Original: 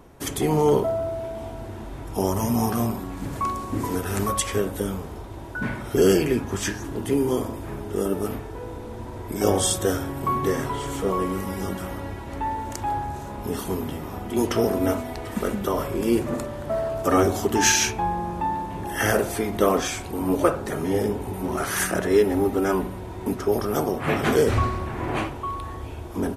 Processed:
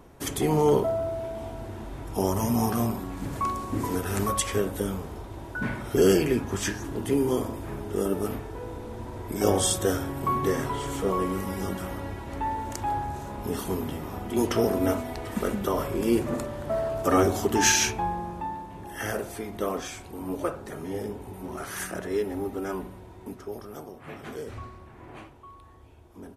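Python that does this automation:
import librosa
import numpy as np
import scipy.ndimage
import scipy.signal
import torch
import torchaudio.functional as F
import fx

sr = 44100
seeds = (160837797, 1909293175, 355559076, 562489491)

y = fx.gain(x, sr, db=fx.line((17.9, -2.0), (18.66, -9.5), (22.9, -9.5), (23.92, -18.0)))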